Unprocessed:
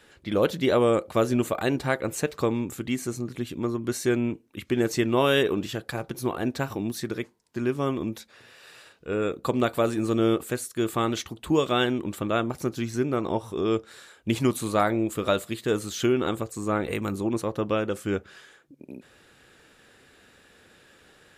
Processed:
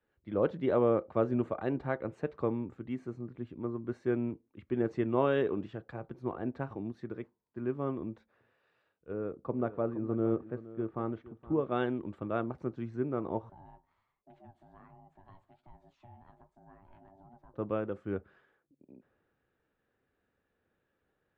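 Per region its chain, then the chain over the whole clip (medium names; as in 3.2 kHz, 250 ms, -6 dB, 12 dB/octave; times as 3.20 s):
9.12–11.72 s: tape spacing loss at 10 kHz 32 dB + delay 469 ms -14 dB
13.49–17.54 s: ring modulator 480 Hz + compression 3:1, threshold -36 dBFS + flange 1.3 Hz, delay 4.1 ms, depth 8.7 ms, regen +46%
whole clip: low-pass 1.3 kHz 12 dB/octave; three bands expanded up and down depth 40%; trim -7.5 dB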